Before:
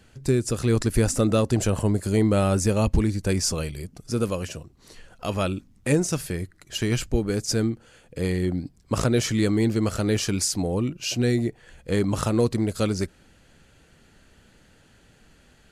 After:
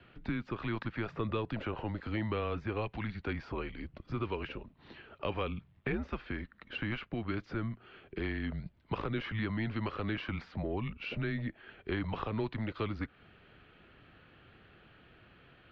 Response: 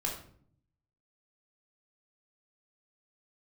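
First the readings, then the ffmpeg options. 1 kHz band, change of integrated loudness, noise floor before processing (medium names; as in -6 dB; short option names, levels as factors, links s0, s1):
-7.0 dB, -13.0 dB, -57 dBFS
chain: -filter_complex "[0:a]acrossover=split=830|2100[s0][s1][s2];[s0]acompressor=threshold=0.02:ratio=4[s3];[s1]acompressor=threshold=0.01:ratio=4[s4];[s2]acompressor=threshold=0.00708:ratio=4[s5];[s3][s4][s5]amix=inputs=3:normalize=0,highpass=f=170:t=q:w=0.5412,highpass=f=170:t=q:w=1.307,lowpass=f=3500:t=q:w=0.5176,lowpass=f=3500:t=q:w=0.7071,lowpass=f=3500:t=q:w=1.932,afreqshift=-110"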